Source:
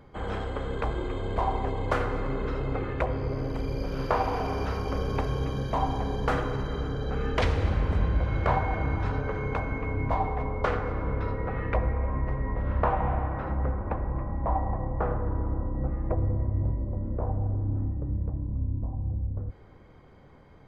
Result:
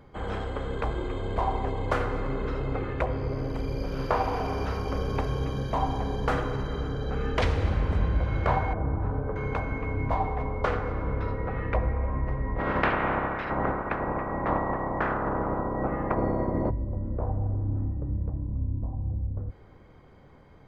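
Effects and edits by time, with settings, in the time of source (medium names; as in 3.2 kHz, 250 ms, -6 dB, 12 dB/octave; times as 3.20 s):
8.73–9.36 s: low-pass 1 kHz
12.58–16.69 s: spectral peaks clipped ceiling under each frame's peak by 25 dB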